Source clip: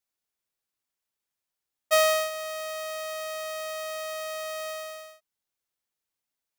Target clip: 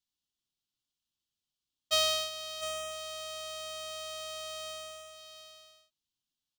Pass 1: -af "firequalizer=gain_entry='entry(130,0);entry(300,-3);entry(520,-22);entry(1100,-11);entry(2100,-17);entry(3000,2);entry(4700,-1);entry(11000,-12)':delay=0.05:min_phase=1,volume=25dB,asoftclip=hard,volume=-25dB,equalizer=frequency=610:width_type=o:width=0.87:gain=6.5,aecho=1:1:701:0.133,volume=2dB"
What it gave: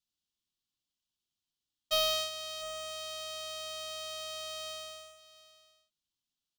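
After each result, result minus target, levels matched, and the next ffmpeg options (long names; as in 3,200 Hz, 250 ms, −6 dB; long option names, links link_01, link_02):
gain into a clipping stage and back: distortion +39 dB; echo-to-direct −7.5 dB
-af "firequalizer=gain_entry='entry(130,0);entry(300,-3);entry(520,-22);entry(1100,-11);entry(2100,-17);entry(3000,2);entry(4700,-1);entry(11000,-12)':delay=0.05:min_phase=1,volume=17dB,asoftclip=hard,volume=-17dB,equalizer=frequency=610:width_type=o:width=0.87:gain=6.5,aecho=1:1:701:0.133,volume=2dB"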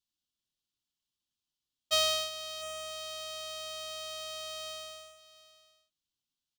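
echo-to-direct −7.5 dB
-af "firequalizer=gain_entry='entry(130,0);entry(300,-3);entry(520,-22);entry(1100,-11);entry(2100,-17);entry(3000,2);entry(4700,-1);entry(11000,-12)':delay=0.05:min_phase=1,volume=17dB,asoftclip=hard,volume=-17dB,equalizer=frequency=610:width_type=o:width=0.87:gain=6.5,aecho=1:1:701:0.316,volume=2dB"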